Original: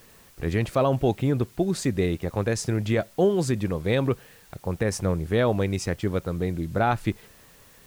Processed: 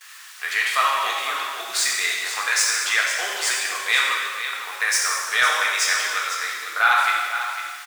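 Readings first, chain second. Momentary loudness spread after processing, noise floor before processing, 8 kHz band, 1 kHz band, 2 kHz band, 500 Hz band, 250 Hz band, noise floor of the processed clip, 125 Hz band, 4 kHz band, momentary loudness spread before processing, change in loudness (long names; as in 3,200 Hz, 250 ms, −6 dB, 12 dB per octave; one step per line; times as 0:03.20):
8 LU, −53 dBFS, +15.0 dB, +8.5 dB, +16.5 dB, −12.5 dB, below −25 dB, −42 dBFS, below −40 dB, +16.0 dB, 6 LU, +5.0 dB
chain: running median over 3 samples
Chebyshev high-pass filter 1,300 Hz, order 3
on a send: single-tap delay 502 ms −10 dB
on the sum: noise gate with hold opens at −46 dBFS
reverb whose tail is shaped and stops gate 480 ms falling, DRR −3 dB
sine wavefolder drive 3 dB, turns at −10.5 dBFS
level +5 dB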